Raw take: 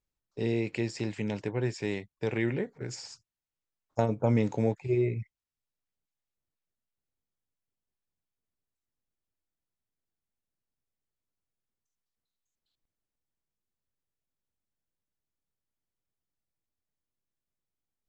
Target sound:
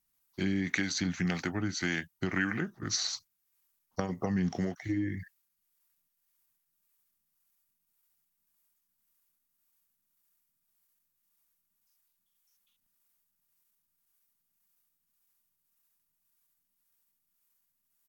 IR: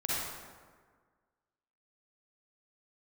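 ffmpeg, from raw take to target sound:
-filter_complex "[0:a]acompressor=threshold=0.0398:ratio=20,firequalizer=gain_entry='entry(110,0);entry(210,11);entry(480,1);entry(1200,13);entry(4300,8)':delay=0.05:min_phase=1,acrossover=split=420[s0][s1];[s0]aeval=exprs='val(0)*(1-0.5/2+0.5/2*cos(2*PI*1.8*n/s))':c=same[s2];[s1]aeval=exprs='val(0)*(1-0.5/2-0.5/2*cos(2*PI*1.8*n/s))':c=same[s3];[s2][s3]amix=inputs=2:normalize=0,aemphasis=mode=production:type=50fm,asetrate=37084,aresample=44100,atempo=1.18921,volume=0.794"

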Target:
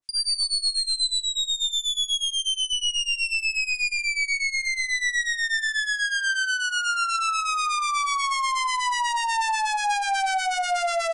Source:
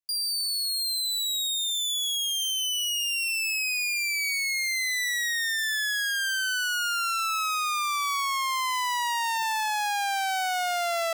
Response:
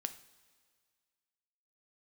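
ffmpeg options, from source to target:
-filter_complex "[0:a]asettb=1/sr,asplit=3[s0][s1][s2];[s0]atrim=end=1.194[s3];[s1]atrim=start=1.19:end=2.73,asetpts=PTS-STARTPTS,afade=t=in:d=0.004:c=qsin,afade=t=out:st=1.536:d=0.004:c=qsin,highpass=f=880:w=0.5412,highpass=f=880:w=1.3066[s4];[s2]atrim=start=2.726[s5];[s3][s4]acrossfade=d=0.004:c1=hsin:c2=qsin[s6];[s6][s5]acrossfade=d=0.004:c1=qsin:c2=hsin,asplit=2[s7][s8];[s8]alimiter=level_in=2.11:limit=0.0631:level=0:latency=1,volume=0.473,volume=1.12[s9];[s7][s9]amix=inputs=2:normalize=0,acrossover=split=1200[s10][s11];[s10]aeval=exprs='val(0)*(1-1/2+1/2*cos(2*PI*8.2*n/s))':c=same[s12];[s11]aeval=exprs='val(0)*(1-1/2-1/2*cos(2*PI*8.2*n/s))':c=same[s13];[s12][s13]amix=inputs=2:normalize=0,asoftclip=type=tanh:threshold=0.0422,aecho=1:1:124:0.168,asplit=2[s14][s15];[1:a]atrim=start_sample=2205,atrim=end_sample=3969[s16];[s15][s16]afir=irnorm=-1:irlink=0,volume=2.24[s17];[s14][s17]amix=inputs=2:normalize=0,aresample=22050,aresample=44100,volume=0.841"

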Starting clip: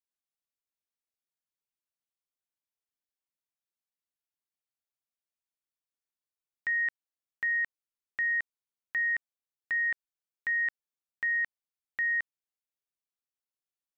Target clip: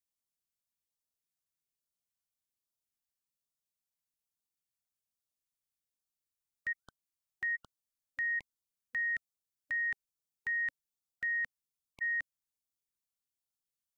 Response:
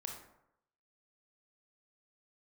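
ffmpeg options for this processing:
-af "bass=f=250:g=9,treble=f=4000:g=8,afftfilt=real='re*(1-between(b*sr/1024,340*pow(2200/340,0.5+0.5*sin(2*PI*1.2*pts/sr))/1.41,340*pow(2200/340,0.5+0.5*sin(2*PI*1.2*pts/sr))*1.41))':imag='im*(1-between(b*sr/1024,340*pow(2200/340,0.5+0.5*sin(2*PI*1.2*pts/sr))/1.41,340*pow(2200/340,0.5+0.5*sin(2*PI*1.2*pts/sr))*1.41))':win_size=1024:overlap=0.75,volume=0.562"

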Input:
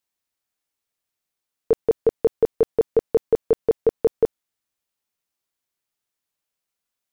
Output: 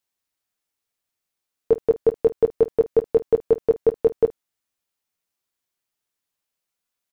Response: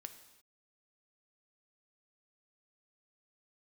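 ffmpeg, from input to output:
-af "aecho=1:1:11|51:0.266|0.133"

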